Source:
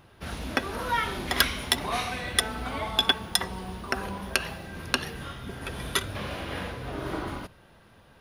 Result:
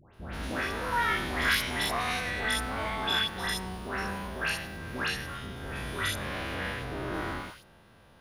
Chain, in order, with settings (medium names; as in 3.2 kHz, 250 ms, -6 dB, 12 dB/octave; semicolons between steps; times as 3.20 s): spectrogram pixelated in time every 100 ms; phase dispersion highs, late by 142 ms, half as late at 1.5 kHz; dynamic bell 1.8 kHz, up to +6 dB, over -48 dBFS, Q 1.7